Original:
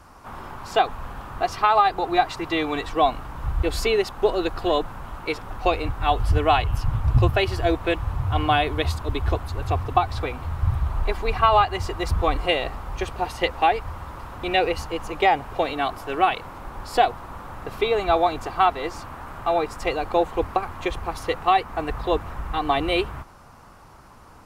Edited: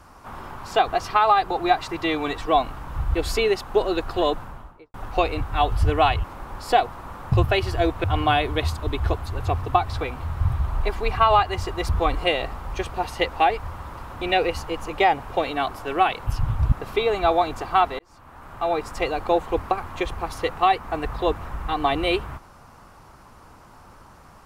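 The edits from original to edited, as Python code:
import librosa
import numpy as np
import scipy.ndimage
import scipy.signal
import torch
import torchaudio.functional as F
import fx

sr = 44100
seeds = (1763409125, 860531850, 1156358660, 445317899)

y = fx.studio_fade_out(x, sr, start_s=4.83, length_s=0.59)
y = fx.edit(y, sr, fx.cut(start_s=0.88, length_s=0.48),
    fx.swap(start_s=6.72, length_s=0.45, other_s=16.49, other_length_s=1.08),
    fx.cut(start_s=7.89, length_s=0.37),
    fx.fade_in_span(start_s=18.84, length_s=0.86), tone=tone)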